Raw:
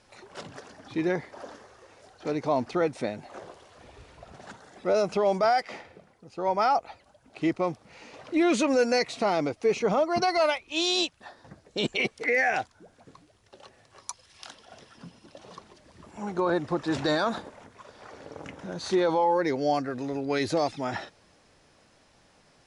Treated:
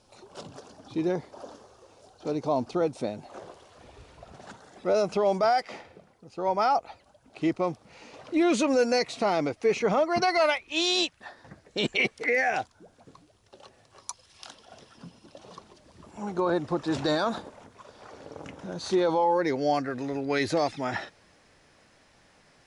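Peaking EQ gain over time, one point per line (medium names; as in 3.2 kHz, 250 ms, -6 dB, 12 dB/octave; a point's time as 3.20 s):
peaking EQ 1.9 kHz 0.75 oct
3.01 s -12.5 dB
3.47 s -3 dB
9.01 s -3 dB
9.77 s +4.5 dB
12.03 s +4.5 dB
12.53 s -4 dB
19.18 s -4 dB
19.74 s +4 dB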